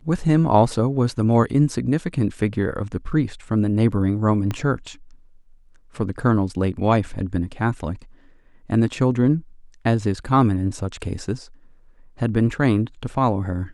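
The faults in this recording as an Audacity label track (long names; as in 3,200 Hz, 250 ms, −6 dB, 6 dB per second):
4.510000	4.510000	click −13 dBFS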